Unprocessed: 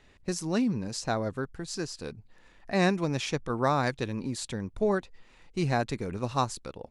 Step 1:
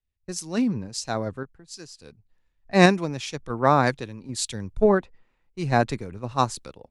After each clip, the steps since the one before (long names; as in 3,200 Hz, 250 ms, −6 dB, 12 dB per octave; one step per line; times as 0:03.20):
sample-and-hold tremolo
multiband upward and downward expander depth 100%
level +4.5 dB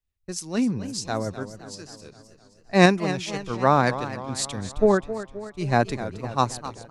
feedback echo with a swinging delay time 261 ms, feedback 57%, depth 143 cents, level −13 dB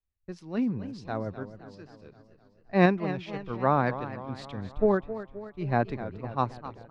high-frequency loss of the air 350 metres
level −4 dB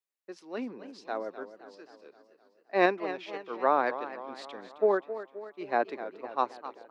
high-pass filter 330 Hz 24 dB per octave